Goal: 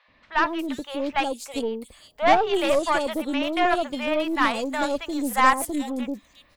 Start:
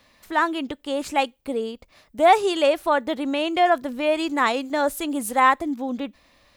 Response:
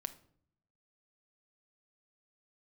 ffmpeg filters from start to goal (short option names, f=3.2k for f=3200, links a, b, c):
-filter_complex "[0:a]acrossover=split=670|3700[a][b][c];[a]adelay=80[d];[c]adelay=360[e];[d][b][e]amix=inputs=3:normalize=0,aeval=exprs='0.501*(cos(1*acos(clip(val(0)/0.501,-1,1)))-cos(1*PI/2))+0.0447*(cos(6*acos(clip(val(0)/0.501,-1,1)))-cos(6*PI/2))':c=same"